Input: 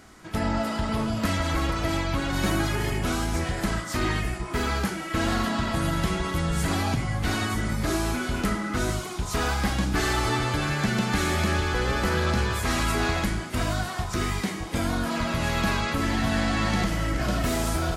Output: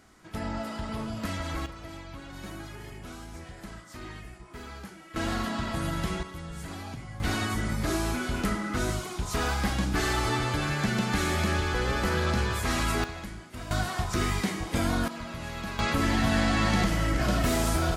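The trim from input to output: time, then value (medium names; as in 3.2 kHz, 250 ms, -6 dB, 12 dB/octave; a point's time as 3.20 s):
-7.5 dB
from 1.66 s -16 dB
from 5.16 s -5 dB
from 6.23 s -13.5 dB
from 7.20 s -2.5 dB
from 13.04 s -13 dB
from 13.71 s -0.5 dB
from 15.08 s -11 dB
from 15.79 s 0 dB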